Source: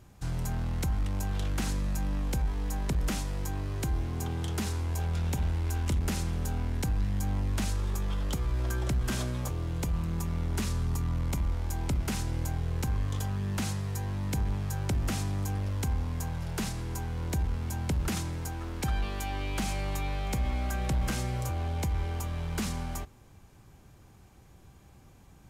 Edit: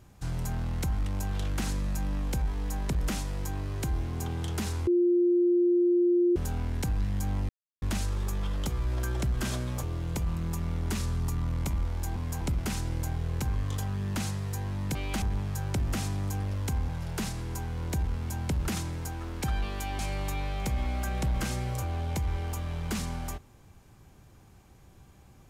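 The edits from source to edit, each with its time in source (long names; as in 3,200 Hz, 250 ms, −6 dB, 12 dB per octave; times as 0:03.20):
0:04.87–0:06.36: beep over 351 Hz −20 dBFS
0:07.49: splice in silence 0.33 s
0:16.04–0:16.29: move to 0:11.83
0:19.39–0:19.66: move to 0:14.37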